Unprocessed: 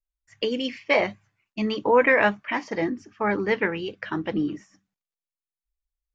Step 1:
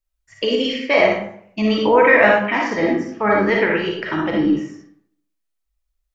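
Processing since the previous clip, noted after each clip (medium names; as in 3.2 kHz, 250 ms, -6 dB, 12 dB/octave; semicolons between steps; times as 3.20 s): in parallel at -2.5 dB: peak limiter -16 dBFS, peak gain reduction 9 dB; on the sum: reverberation RT60 0.65 s, pre-delay 15 ms, DRR -2 dB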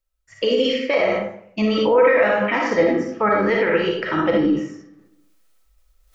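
peak limiter -11.5 dBFS, peak gain reduction 10 dB; reverse; upward compressor, threshold -43 dBFS; reverse; small resonant body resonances 510/1300 Hz, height 9 dB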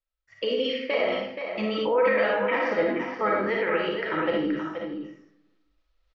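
low-pass 4.5 kHz 24 dB/octave; bass shelf 250 Hz -7 dB; delay 476 ms -7.5 dB; trim -6 dB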